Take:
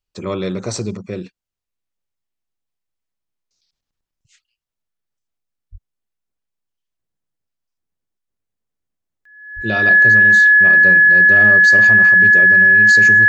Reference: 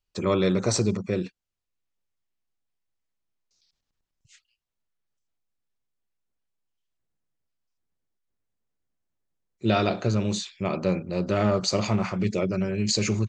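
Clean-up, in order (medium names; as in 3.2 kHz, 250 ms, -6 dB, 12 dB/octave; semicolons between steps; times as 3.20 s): band-stop 1.7 kHz, Q 30; de-plosive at 5.71/9.55 s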